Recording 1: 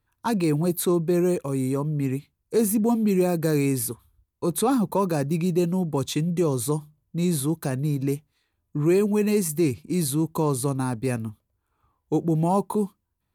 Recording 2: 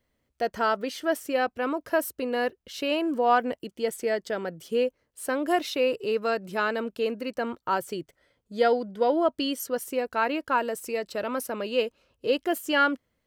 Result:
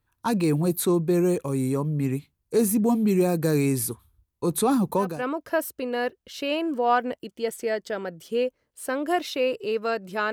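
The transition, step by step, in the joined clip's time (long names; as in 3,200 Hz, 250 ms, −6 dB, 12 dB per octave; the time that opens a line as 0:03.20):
recording 1
0:05.10: continue with recording 2 from 0:01.50, crossfade 0.28 s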